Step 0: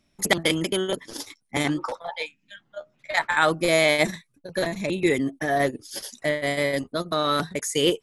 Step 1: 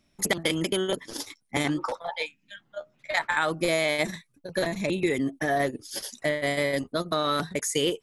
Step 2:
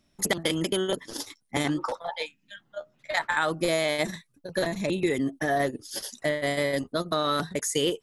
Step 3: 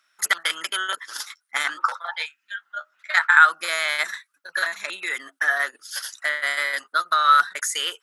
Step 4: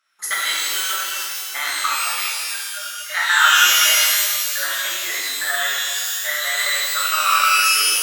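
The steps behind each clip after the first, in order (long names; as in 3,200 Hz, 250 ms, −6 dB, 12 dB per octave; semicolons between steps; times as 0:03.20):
downward compressor, threshold −21 dBFS, peak gain reduction 7.5 dB
parametric band 2,300 Hz −5 dB 0.26 octaves
high-pass with resonance 1,400 Hz, resonance Q 5.4; level +3 dB
reverb with rising layers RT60 1.9 s, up +12 semitones, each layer −2 dB, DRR −7 dB; level −6.5 dB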